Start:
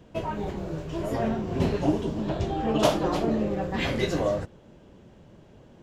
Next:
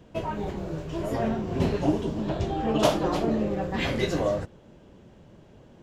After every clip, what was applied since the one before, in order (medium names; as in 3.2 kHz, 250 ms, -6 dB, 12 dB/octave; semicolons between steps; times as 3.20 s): no audible change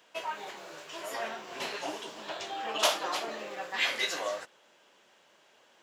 Bessel high-pass 1.5 kHz, order 2; trim +4.5 dB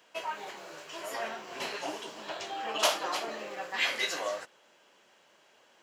band-stop 3.6 kHz, Q 17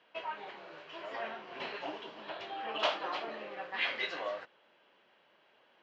low-pass 3.7 kHz 24 dB/octave; trim -3.5 dB